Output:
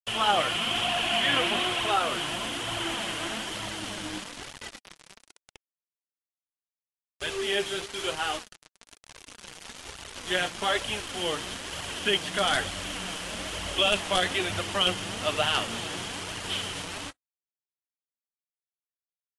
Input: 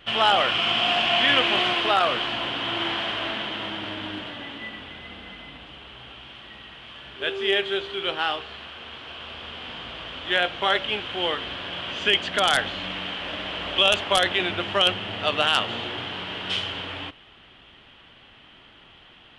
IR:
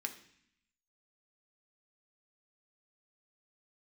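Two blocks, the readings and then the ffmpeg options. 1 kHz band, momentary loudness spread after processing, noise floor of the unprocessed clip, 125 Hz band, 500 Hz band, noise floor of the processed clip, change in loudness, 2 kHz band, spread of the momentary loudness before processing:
−4.5 dB, 16 LU, −51 dBFS, −0.5 dB, −4.0 dB, below −85 dBFS, −4.5 dB, −5.0 dB, 20 LU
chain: -af "lowshelf=frequency=190:gain=8,acrusher=bits=4:mix=0:aa=0.000001,flanger=delay=0.9:depth=5.9:regen=28:speed=1.1:shape=triangular,volume=-1.5dB" -ar 24000 -c:a aac -b:a 48k

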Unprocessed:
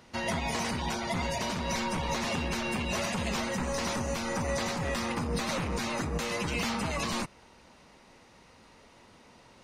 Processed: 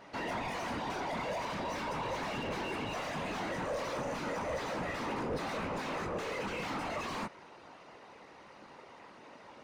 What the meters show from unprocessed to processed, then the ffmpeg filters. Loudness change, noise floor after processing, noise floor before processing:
−5.5 dB, −55 dBFS, −57 dBFS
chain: -filter_complex "[0:a]flanger=delay=16.5:depth=7.1:speed=0.39,afftfilt=real='hypot(re,im)*cos(2*PI*random(0))':imag='hypot(re,im)*sin(2*PI*random(1))':win_size=512:overlap=0.75,asplit=2[link_01][link_02];[link_02]highpass=frequency=720:poles=1,volume=25dB,asoftclip=type=tanh:threshold=-26dB[link_03];[link_01][link_03]amix=inputs=2:normalize=0,lowpass=frequency=1000:poles=1,volume=-6dB"

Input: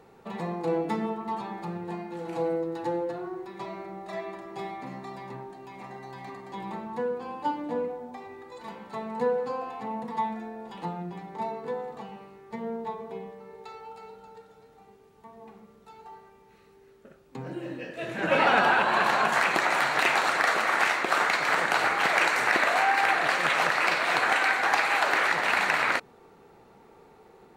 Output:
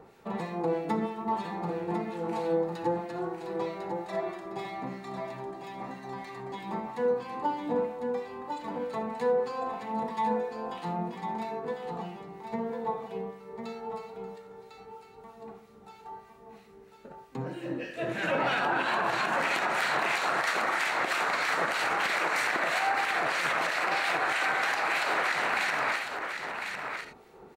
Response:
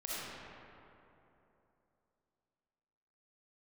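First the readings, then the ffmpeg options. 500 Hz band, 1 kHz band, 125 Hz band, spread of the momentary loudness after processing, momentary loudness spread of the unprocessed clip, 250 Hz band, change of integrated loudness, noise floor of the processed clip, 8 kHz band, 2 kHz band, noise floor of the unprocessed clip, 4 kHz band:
−0.5 dB, −3.0 dB, 0.0 dB, 14 LU, 20 LU, −0.5 dB, −4.5 dB, −53 dBFS, −3.0 dB, −4.0 dB, −56 dBFS, −3.0 dB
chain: -filter_complex "[0:a]acrossover=split=1600[link_01][link_02];[link_01]aeval=exprs='val(0)*(1-0.7/2+0.7/2*cos(2*PI*3.1*n/s))':channel_layout=same[link_03];[link_02]aeval=exprs='val(0)*(1-0.7/2-0.7/2*cos(2*PI*3.1*n/s))':channel_layout=same[link_04];[link_03][link_04]amix=inputs=2:normalize=0,asplit=2[link_05][link_06];[1:a]atrim=start_sample=2205,atrim=end_sample=3969[link_07];[link_06][link_07]afir=irnorm=-1:irlink=0,volume=-5.5dB[link_08];[link_05][link_08]amix=inputs=2:normalize=0,alimiter=limit=-20.5dB:level=0:latency=1:release=111,aecho=1:1:1051:0.473,volume=1.5dB"

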